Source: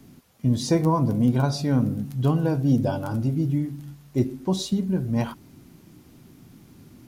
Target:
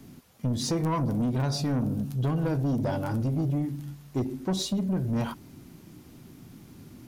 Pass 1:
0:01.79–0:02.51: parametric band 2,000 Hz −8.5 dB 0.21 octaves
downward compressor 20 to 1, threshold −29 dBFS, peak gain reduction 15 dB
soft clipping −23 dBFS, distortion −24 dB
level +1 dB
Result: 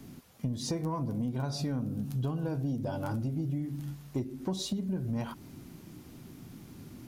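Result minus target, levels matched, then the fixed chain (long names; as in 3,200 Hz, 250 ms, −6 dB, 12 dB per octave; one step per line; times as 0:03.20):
downward compressor: peak gain reduction +9.5 dB
0:01.79–0:02.51: parametric band 2,000 Hz −8.5 dB 0.21 octaves
downward compressor 20 to 1, threshold −19 dBFS, peak gain reduction 5.5 dB
soft clipping −23 dBFS, distortion −13 dB
level +1 dB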